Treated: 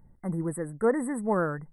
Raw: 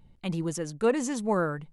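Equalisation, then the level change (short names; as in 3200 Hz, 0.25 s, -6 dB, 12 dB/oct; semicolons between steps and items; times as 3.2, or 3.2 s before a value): brick-wall FIR band-stop 2100–7800 Hz; 0.0 dB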